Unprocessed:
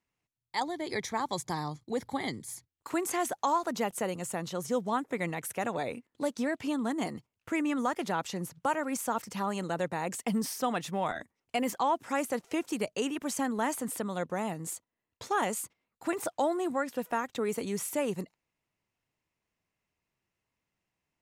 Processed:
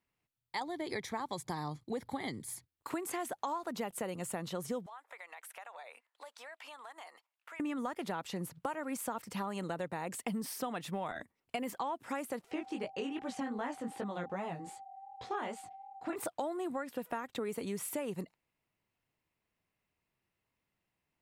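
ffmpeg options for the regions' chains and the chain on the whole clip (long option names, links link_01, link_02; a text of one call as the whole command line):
ffmpeg -i in.wav -filter_complex "[0:a]asettb=1/sr,asplit=3[link_01][link_02][link_03];[link_01]atrim=end=4.864[link_04];[link_02]atrim=start=4.86:end=7.6,asetpts=PTS-STARTPTS,afade=type=in:duration=0.004:curve=qsin,afade=type=out:start_time=2.736:duration=0.004:curve=qsin,highpass=frequency=720:width=0.5412,highpass=frequency=720:width=1.3066,highshelf=frequency=5400:gain=-5.5,acompressor=threshold=-46dB:ratio=5:attack=3.2:release=140:knee=1:detection=peak[link_05];[link_03]atrim=start=7.596[link_06];[link_04][link_05]acrossfade=duration=0.004:curve1=hsin:curve2=qsin[link_07];[link_07][link_06]acrossfade=duration=0.004:curve1=qsin:curve2=hsin,asettb=1/sr,asplit=3[link_08][link_09][link_10];[link_08]atrim=end=12.514[link_11];[link_09]atrim=start=12.51:end=16.16,asetpts=PTS-STARTPTS,afade=type=in:duration=0.004:curve=qsin,afade=type=out:start_time=3.646:duration=0.004:curve=qsin,lowpass=5000,aeval=exprs='val(0)+0.00562*sin(2*PI*780*n/s)':channel_layout=same,flanger=delay=15.5:depth=6.7:speed=2.6[link_12];[link_10]atrim=start=16.156[link_13];[link_11][link_12]acrossfade=duration=0.004:curve1=hsin:curve2=qsin[link_14];[link_14][link_13]acrossfade=duration=0.004:curve1=qsin:curve2=hsin,acompressor=threshold=-34dB:ratio=6,equalizer=frequency=6300:width_type=o:width=0.59:gain=-6.5" out.wav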